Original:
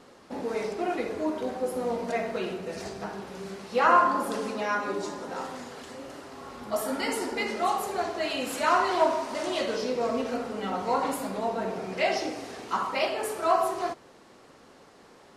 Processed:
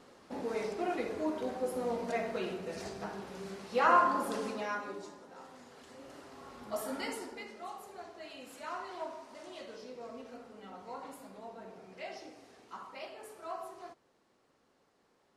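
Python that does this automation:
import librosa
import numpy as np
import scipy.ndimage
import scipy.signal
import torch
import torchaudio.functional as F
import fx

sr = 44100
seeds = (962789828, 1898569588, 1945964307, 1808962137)

y = fx.gain(x, sr, db=fx.line((4.48, -5.0), (5.31, -17.5), (6.2, -8.0), (7.03, -8.0), (7.53, -18.0)))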